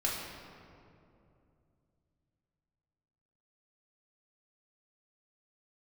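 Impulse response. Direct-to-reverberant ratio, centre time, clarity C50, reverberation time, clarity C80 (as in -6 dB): -4.5 dB, 97 ms, 1.0 dB, 2.7 s, 2.5 dB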